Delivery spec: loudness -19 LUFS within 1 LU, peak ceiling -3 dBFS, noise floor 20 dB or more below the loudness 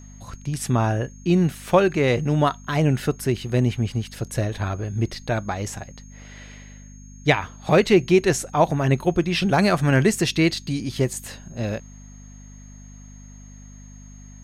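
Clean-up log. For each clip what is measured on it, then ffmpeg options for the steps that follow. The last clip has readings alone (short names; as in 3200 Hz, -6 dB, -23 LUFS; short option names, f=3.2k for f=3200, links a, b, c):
hum 50 Hz; harmonics up to 250 Hz; hum level -40 dBFS; steady tone 6500 Hz; tone level -50 dBFS; loudness -22.0 LUFS; peak -4.5 dBFS; loudness target -19.0 LUFS
-> -af "bandreject=f=50:t=h:w=4,bandreject=f=100:t=h:w=4,bandreject=f=150:t=h:w=4,bandreject=f=200:t=h:w=4,bandreject=f=250:t=h:w=4"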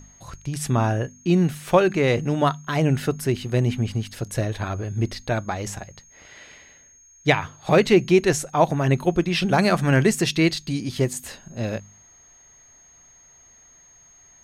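hum none; steady tone 6500 Hz; tone level -50 dBFS
-> -af "bandreject=f=6.5k:w=30"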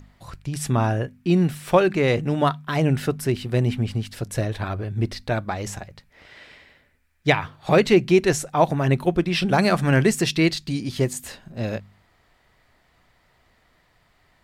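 steady tone none; loudness -22.0 LUFS; peak -4.0 dBFS; loudness target -19.0 LUFS
-> -af "volume=3dB,alimiter=limit=-3dB:level=0:latency=1"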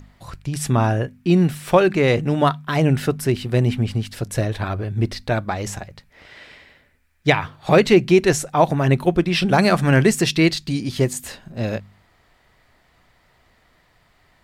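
loudness -19.5 LUFS; peak -3.0 dBFS; noise floor -60 dBFS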